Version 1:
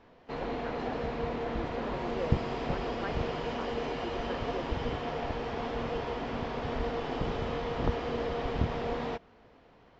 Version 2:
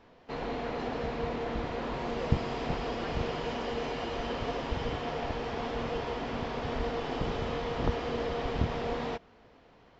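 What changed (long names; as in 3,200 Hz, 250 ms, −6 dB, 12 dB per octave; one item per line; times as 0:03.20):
speech −5.5 dB
master: add high-shelf EQ 4,100 Hz +5 dB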